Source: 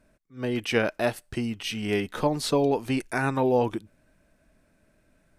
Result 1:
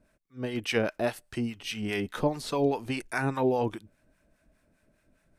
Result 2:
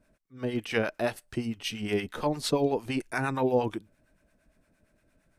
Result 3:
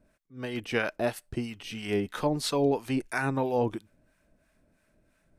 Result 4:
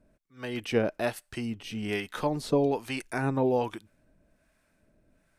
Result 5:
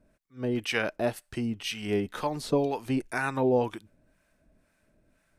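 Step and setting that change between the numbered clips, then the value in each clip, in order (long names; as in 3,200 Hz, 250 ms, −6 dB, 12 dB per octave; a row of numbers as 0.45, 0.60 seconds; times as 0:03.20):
two-band tremolo in antiphase, speed: 4.9, 8.7, 3, 1.2, 2 Hertz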